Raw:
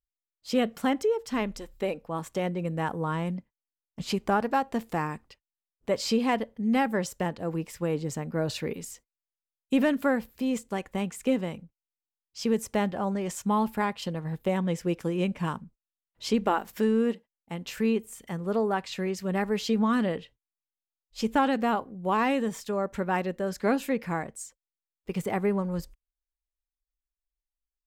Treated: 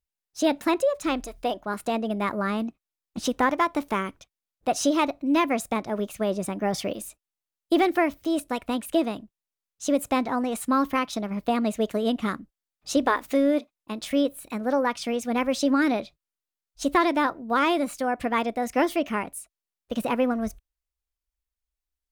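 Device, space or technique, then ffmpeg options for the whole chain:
nightcore: -af "asetrate=55566,aresample=44100,volume=3dB"

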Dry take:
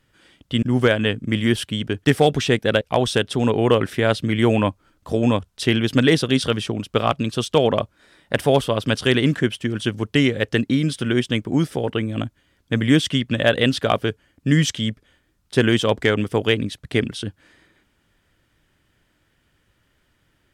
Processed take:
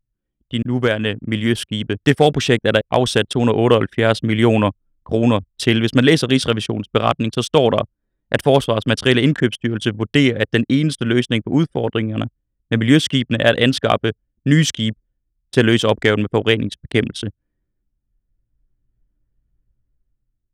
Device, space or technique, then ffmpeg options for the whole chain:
voice memo with heavy noise removal: -af "anlmdn=15.8,dynaudnorm=f=630:g=5:m=15.5dB,volume=-1dB"

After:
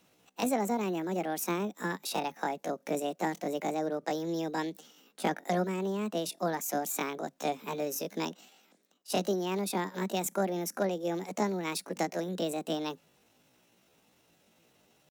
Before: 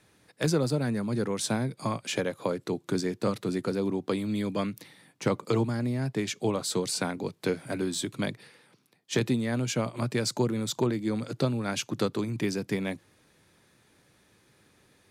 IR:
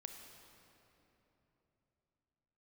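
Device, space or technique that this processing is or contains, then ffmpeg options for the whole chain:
chipmunk voice: -af "asetrate=70004,aresample=44100,atempo=0.629961,volume=-3.5dB"

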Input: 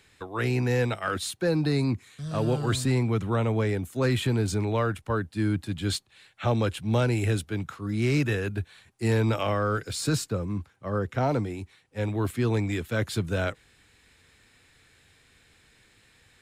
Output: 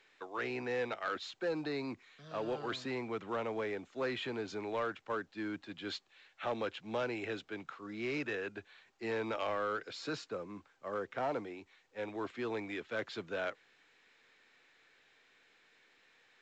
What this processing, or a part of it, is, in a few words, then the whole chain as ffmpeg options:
telephone: -af "highpass=390,lowpass=3.5k,asoftclip=type=tanh:threshold=-21.5dB,volume=-5.5dB" -ar 16000 -c:a pcm_mulaw

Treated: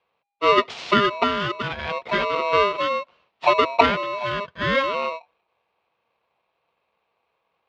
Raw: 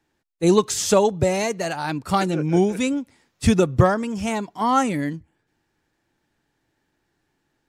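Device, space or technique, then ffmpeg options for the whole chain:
ring modulator pedal into a guitar cabinet: -af "aeval=exprs='val(0)*sgn(sin(2*PI*810*n/s))':c=same,highpass=95,equalizer=f=100:t=q:w=4:g=-7,equalizer=f=280:t=q:w=4:g=-6,equalizer=f=1.7k:t=q:w=4:g=-5,lowpass=f=3.5k:w=0.5412,lowpass=f=3.5k:w=1.3066"

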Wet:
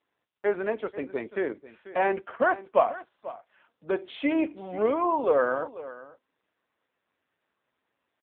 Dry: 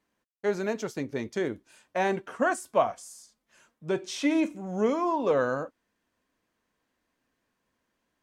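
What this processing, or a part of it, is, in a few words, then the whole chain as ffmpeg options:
satellite phone: -af "highpass=340,lowpass=3.3k,aecho=1:1:490:0.158,volume=3.5dB" -ar 8000 -c:a libopencore_amrnb -b:a 6700

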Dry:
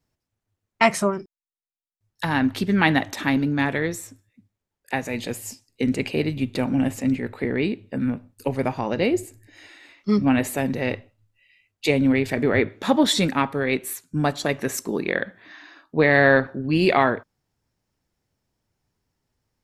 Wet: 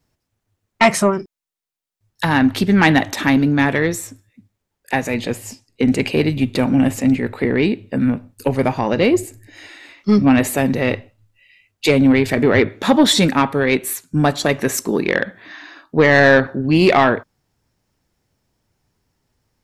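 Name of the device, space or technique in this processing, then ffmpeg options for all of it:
saturation between pre-emphasis and de-emphasis: -filter_complex "[0:a]asettb=1/sr,asplit=3[a][b][c];[a]atrim=end=5.144[d];[b]atrim=start=5.14:end=5.88,asetpts=PTS-STARTPTS,afade=t=in:d=0.004:c=qsin,afade=t=out:st=0.736:d=0.004:c=qsin,highshelf=f=5.4k:g=-9.5[e];[c]atrim=start=5.876[f];[d][e]acrossfade=d=0.004:c1=hsin:c2=qsin[g];[g][f]acrossfade=d=0.004:c1=qsin:c2=hsin,highshelf=f=9.6k:g=11.5,asoftclip=type=tanh:threshold=-11dB,highshelf=f=9.6k:g=-11.5,volume=7.5dB"

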